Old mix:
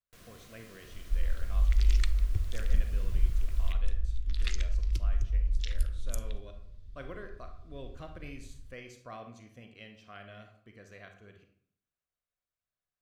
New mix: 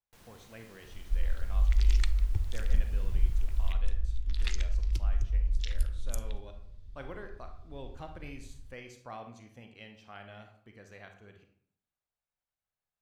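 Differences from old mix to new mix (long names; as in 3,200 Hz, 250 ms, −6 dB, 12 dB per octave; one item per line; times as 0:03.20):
first sound −3.0 dB
master: remove Butterworth band-reject 860 Hz, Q 4.1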